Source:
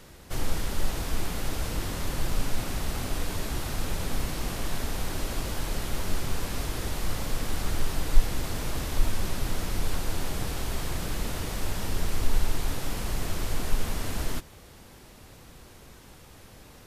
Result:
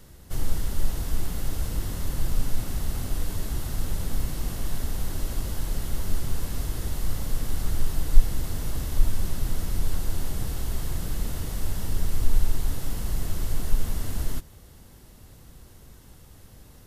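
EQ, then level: low shelf 230 Hz +10.5 dB; high shelf 7900 Hz +10 dB; notch 2400 Hz, Q 13; -6.5 dB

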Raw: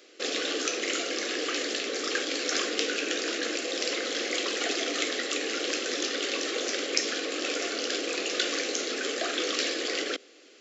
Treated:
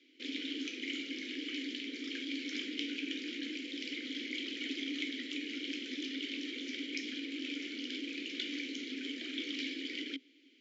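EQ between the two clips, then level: vowel filter i; air absorption 62 m; bell 820 Hz -13 dB 2.7 oct; +8.5 dB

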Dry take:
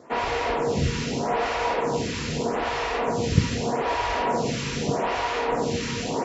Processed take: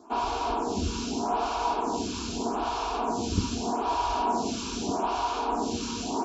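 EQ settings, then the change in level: fixed phaser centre 520 Hz, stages 6; 0.0 dB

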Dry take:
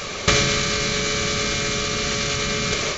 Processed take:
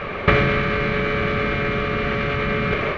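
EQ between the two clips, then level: LPF 2300 Hz 24 dB/oct; +4.0 dB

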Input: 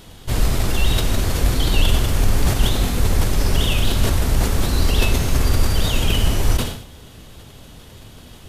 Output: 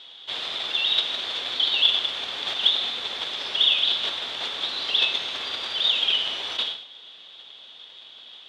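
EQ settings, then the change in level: HPF 650 Hz 12 dB/oct; synth low-pass 3500 Hz, resonance Q 9; -7.5 dB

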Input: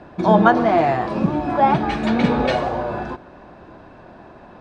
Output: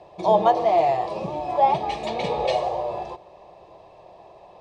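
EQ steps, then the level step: low shelf 110 Hz -5.5 dB; low shelf 220 Hz -8 dB; fixed phaser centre 620 Hz, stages 4; 0.0 dB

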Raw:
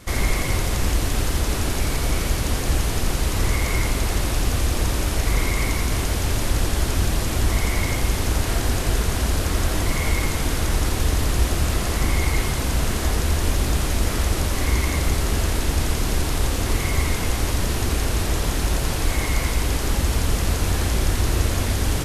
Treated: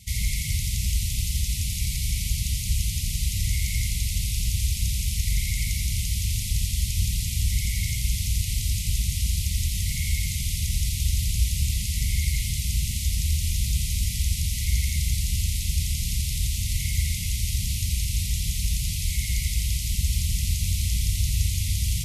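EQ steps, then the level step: HPF 45 Hz 12 dB/oct; brick-wall FIR band-stop 260–1900 Hz; fixed phaser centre 640 Hz, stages 4; 0.0 dB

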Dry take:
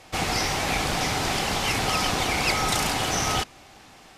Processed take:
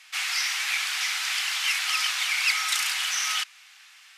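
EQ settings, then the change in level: HPF 1400 Hz 24 dB/oct; bell 2600 Hz +3 dB 1 oct; 0.0 dB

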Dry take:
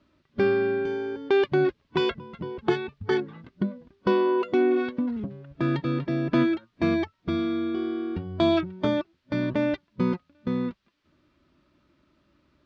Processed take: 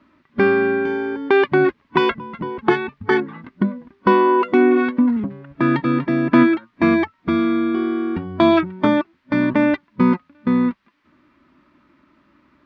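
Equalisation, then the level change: ten-band EQ 250 Hz +11 dB, 1000 Hz +11 dB, 2000 Hz +10 dB; 0.0 dB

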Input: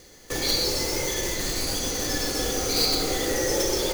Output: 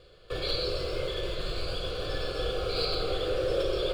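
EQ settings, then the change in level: air absorption 120 m; fixed phaser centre 1300 Hz, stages 8; 0.0 dB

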